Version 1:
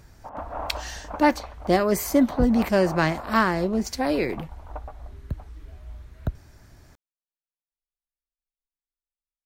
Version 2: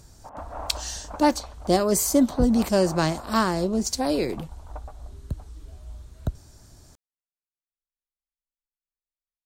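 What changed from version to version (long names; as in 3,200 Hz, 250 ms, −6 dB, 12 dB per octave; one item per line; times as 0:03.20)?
speech: add octave-band graphic EQ 2,000/4,000/8,000 Hz −9/+3/+10 dB
background −3.5 dB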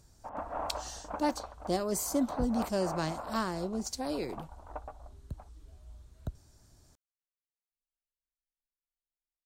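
speech −10.5 dB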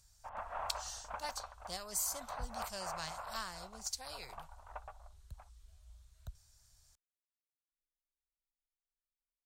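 background +6.5 dB
master: add guitar amp tone stack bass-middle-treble 10-0-10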